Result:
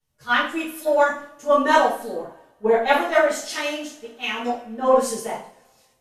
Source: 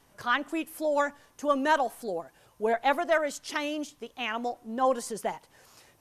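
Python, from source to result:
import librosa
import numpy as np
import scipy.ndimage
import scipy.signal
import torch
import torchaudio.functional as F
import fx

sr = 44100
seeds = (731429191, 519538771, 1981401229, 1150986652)

y = fx.rev_double_slope(x, sr, seeds[0], early_s=0.52, late_s=4.1, knee_db=-27, drr_db=-9.0)
y = fx.band_widen(y, sr, depth_pct=70)
y = y * librosa.db_to_amplitude(-2.0)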